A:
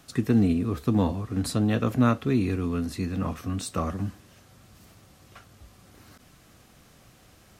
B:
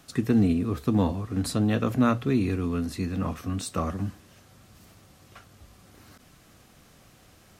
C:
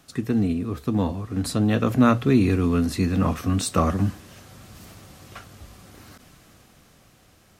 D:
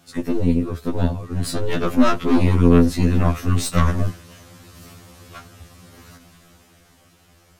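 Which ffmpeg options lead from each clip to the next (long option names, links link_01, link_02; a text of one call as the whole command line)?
ffmpeg -i in.wav -af "bandreject=frequency=60:width_type=h:width=6,bandreject=frequency=120:width_type=h:width=6" out.wav
ffmpeg -i in.wav -af "dynaudnorm=framelen=220:gausssize=17:maxgain=11.5dB,volume=-1dB" out.wav
ffmpeg -i in.wav -af "aeval=exprs='0.596*(cos(1*acos(clip(val(0)/0.596,-1,1)))-cos(1*PI/2))+0.0376*(cos(5*acos(clip(val(0)/0.596,-1,1)))-cos(5*PI/2))+0.0841*(cos(8*acos(clip(val(0)/0.596,-1,1)))-cos(8*PI/2))':channel_layout=same,afftfilt=real='re*2*eq(mod(b,4),0)':imag='im*2*eq(mod(b,4),0)':win_size=2048:overlap=0.75,volume=1.5dB" out.wav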